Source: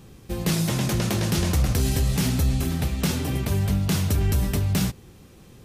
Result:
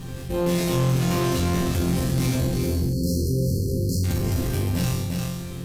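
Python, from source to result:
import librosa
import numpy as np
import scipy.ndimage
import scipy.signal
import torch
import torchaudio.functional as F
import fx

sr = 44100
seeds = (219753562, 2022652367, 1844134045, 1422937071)

p1 = fx.low_shelf(x, sr, hz=97.0, db=12.0)
p2 = fx.fold_sine(p1, sr, drive_db=10, ceiling_db=-5.0)
p3 = p1 + (p2 * librosa.db_to_amplitude(-7.0))
p4 = fx.resonator_bank(p3, sr, root=41, chord='fifth', decay_s=0.8)
p5 = fx.dmg_crackle(p4, sr, seeds[0], per_s=150.0, level_db=-54.0)
p6 = fx.tube_stage(p5, sr, drive_db=26.0, bias=0.7)
p7 = fx.brickwall_bandstop(p6, sr, low_hz=560.0, high_hz=4100.0, at=(2.53, 4.03), fade=0.02)
p8 = fx.doubler(p7, sr, ms=40.0, db=-5)
p9 = p8 + 10.0 ** (-7.5 / 20.0) * np.pad(p8, (int(350 * sr / 1000.0), 0))[:len(p8)]
p10 = fx.env_flatten(p9, sr, amount_pct=50)
y = p10 * librosa.db_to_amplitude(6.0)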